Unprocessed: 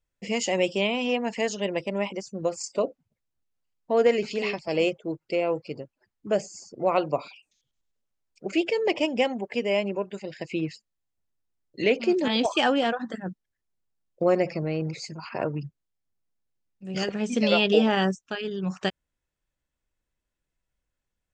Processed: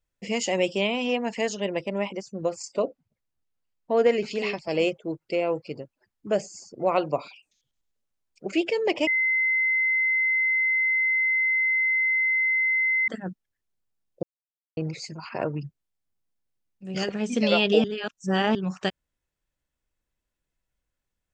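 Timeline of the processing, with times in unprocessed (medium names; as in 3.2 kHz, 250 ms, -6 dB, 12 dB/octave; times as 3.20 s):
1.57–4.26 s: treble shelf 6.2 kHz -6 dB
9.07–13.08 s: bleep 2.06 kHz -20 dBFS
14.23–14.77 s: mute
17.84–18.55 s: reverse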